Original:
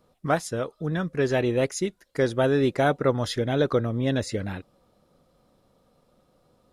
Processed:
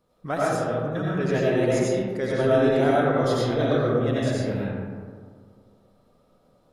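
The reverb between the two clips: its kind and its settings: algorithmic reverb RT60 1.9 s, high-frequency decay 0.35×, pre-delay 50 ms, DRR -6.5 dB; trim -6 dB

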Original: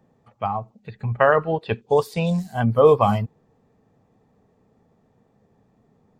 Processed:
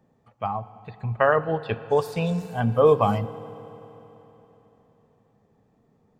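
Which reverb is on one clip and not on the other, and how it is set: FDN reverb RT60 3.7 s, high-frequency decay 0.95×, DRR 14 dB; trim -3 dB

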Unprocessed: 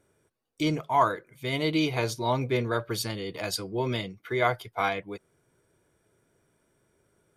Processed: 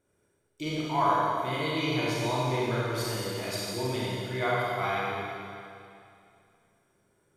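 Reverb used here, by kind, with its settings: Schroeder reverb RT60 2.5 s, combs from 31 ms, DRR -6.5 dB; trim -8 dB

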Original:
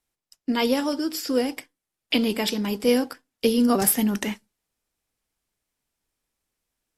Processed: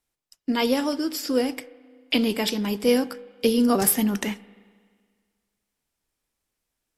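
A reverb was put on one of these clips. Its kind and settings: spring tank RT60 1.8 s, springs 31/39 ms, chirp 55 ms, DRR 19 dB

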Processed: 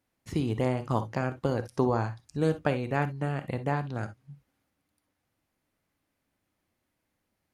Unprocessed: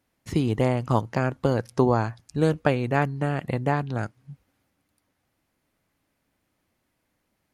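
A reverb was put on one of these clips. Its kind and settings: gated-style reverb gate 80 ms rising, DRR 11 dB; trim -5.5 dB

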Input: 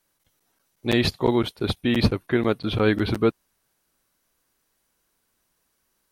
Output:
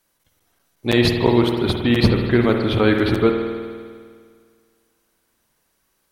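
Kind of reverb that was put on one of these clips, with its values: spring tank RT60 1.9 s, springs 50 ms, chirp 30 ms, DRR 3 dB; trim +3.5 dB

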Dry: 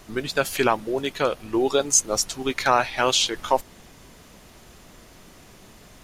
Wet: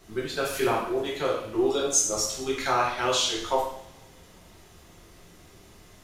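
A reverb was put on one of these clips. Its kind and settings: two-slope reverb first 0.66 s, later 2.4 s, from -26 dB, DRR -5 dB; trim -10.5 dB

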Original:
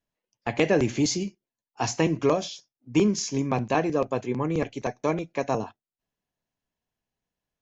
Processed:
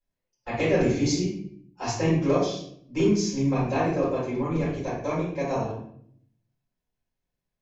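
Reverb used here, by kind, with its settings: simulated room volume 110 m³, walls mixed, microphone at 4.8 m; trim -16 dB

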